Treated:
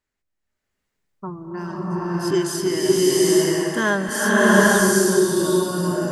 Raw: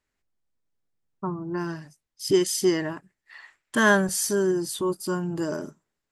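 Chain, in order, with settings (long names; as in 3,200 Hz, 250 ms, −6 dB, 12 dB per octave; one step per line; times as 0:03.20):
slow-attack reverb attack 800 ms, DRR −8.5 dB
level −2 dB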